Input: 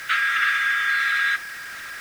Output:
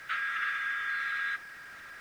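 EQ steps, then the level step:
high-shelf EQ 2,300 Hz −11 dB
−7.5 dB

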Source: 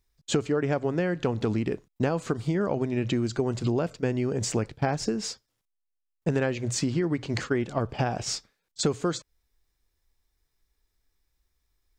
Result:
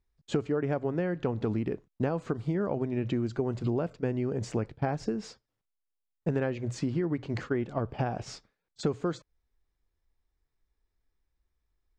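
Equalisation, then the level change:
low-pass filter 1,600 Hz 6 dB per octave
−3.0 dB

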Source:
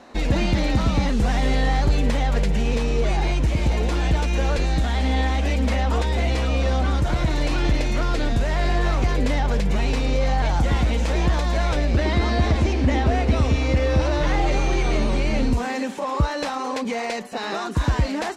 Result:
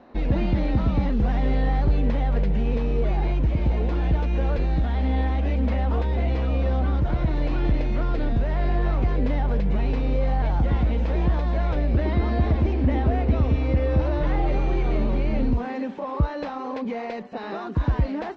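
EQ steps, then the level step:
low-pass filter 5,000 Hz 12 dB per octave
high-frequency loss of the air 130 metres
tilt shelving filter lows +4 dB
−5.0 dB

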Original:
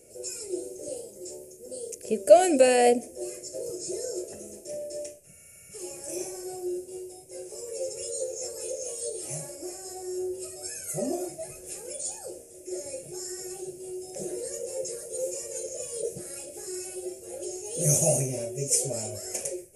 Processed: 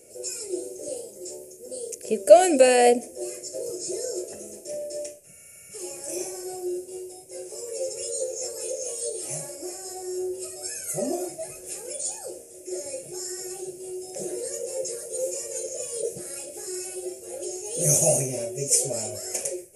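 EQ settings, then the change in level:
low-shelf EQ 180 Hz −7.5 dB
+3.5 dB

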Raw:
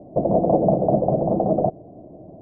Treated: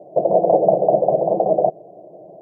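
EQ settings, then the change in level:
high-pass filter 180 Hz 24 dB per octave
phaser with its sweep stopped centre 600 Hz, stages 4
+5.0 dB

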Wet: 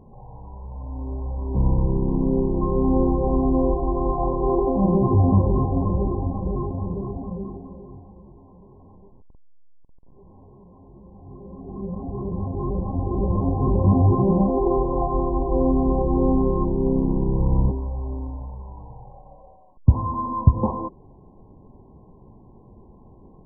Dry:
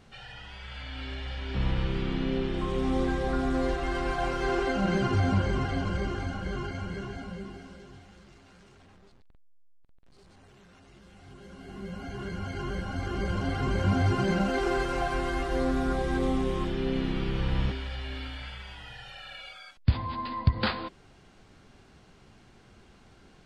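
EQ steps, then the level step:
linear-phase brick-wall low-pass 1,100 Hz
parametric band 690 Hz −5 dB 0.49 octaves
+8.5 dB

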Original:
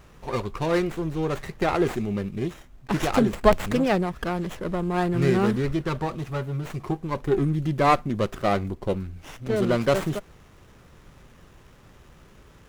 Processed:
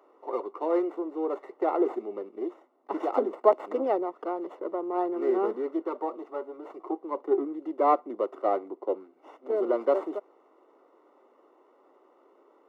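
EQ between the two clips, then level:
Savitzky-Golay smoothing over 65 samples
Butterworth high-pass 300 Hz 48 dB per octave
−1.5 dB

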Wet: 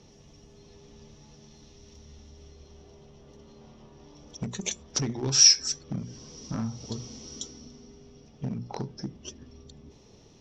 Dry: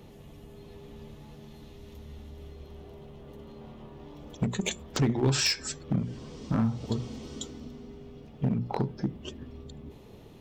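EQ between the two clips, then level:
low-pass with resonance 5,700 Hz, resonance Q 13
−5.5 dB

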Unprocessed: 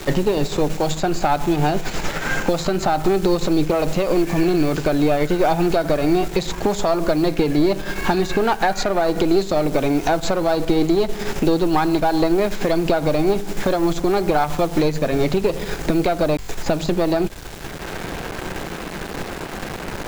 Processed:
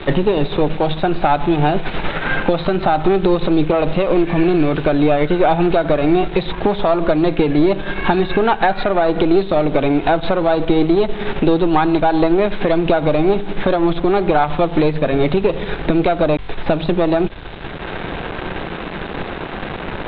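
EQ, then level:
Chebyshev low-pass filter 3,800 Hz, order 6
+4.0 dB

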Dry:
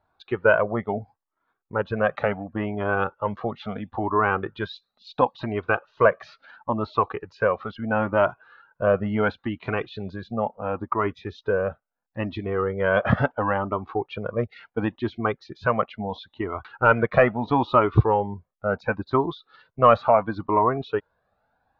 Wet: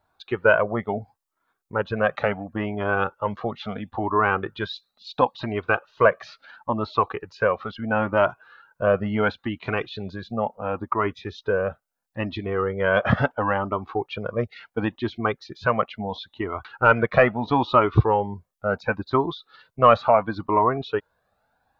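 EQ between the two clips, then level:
high-shelf EQ 3,300 Hz +9 dB
0.0 dB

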